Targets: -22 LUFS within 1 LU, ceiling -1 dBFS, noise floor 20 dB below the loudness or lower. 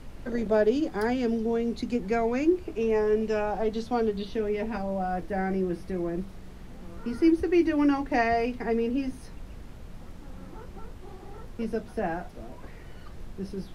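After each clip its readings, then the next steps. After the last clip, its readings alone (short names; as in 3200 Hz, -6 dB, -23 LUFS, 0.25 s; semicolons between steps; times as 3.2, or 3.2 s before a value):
noise floor -44 dBFS; noise floor target -48 dBFS; loudness -27.5 LUFS; peak -12.0 dBFS; loudness target -22.0 LUFS
-> noise print and reduce 6 dB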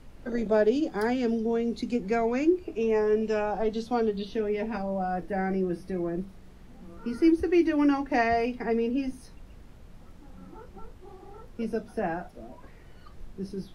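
noise floor -50 dBFS; loudness -27.5 LUFS; peak -12.5 dBFS; loudness target -22.0 LUFS
-> gain +5.5 dB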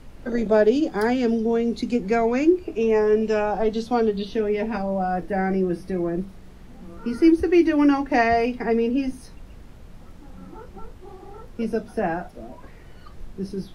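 loudness -22.0 LUFS; peak -7.0 dBFS; noise floor -44 dBFS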